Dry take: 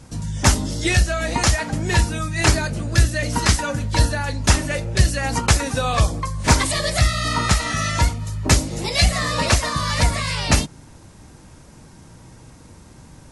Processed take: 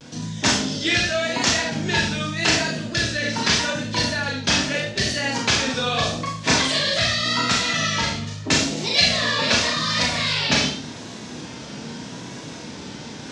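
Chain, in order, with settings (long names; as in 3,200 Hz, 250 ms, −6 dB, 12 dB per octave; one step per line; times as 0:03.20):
reversed playback
upward compression, threshold −18 dBFS
reversed playback
loudspeaker in its box 230–6,000 Hz, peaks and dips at 330 Hz −4 dB, 560 Hz −5 dB, 840 Hz −7 dB, 1,200 Hz −7 dB, 2,000 Hz −3 dB, 3,400 Hz +4 dB
four-comb reverb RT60 0.5 s, combs from 26 ms, DRR −1 dB
pitch vibrato 0.83 Hz 69 cents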